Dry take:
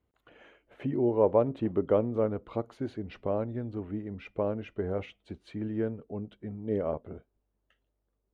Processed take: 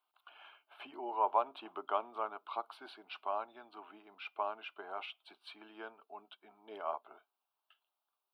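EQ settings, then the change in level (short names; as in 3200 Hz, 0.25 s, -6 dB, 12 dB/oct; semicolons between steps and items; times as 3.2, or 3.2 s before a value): HPF 590 Hz 24 dB/oct; fixed phaser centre 1900 Hz, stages 6; +5.5 dB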